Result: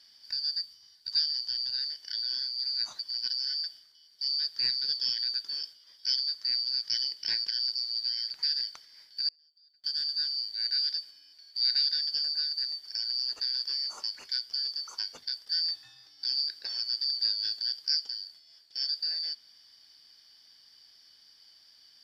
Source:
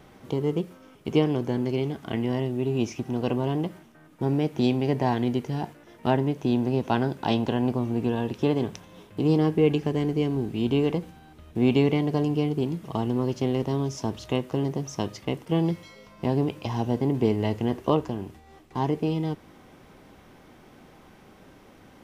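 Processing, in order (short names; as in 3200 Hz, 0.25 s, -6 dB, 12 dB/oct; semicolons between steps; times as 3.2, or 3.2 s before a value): four-band scrambler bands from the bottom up 4321; 0.6–1.45 fifteen-band EQ 100 Hz +7 dB, 630 Hz -8 dB, 1600 Hz -5 dB; 9.28–9.84 flipped gate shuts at -17 dBFS, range -37 dB; gain -6.5 dB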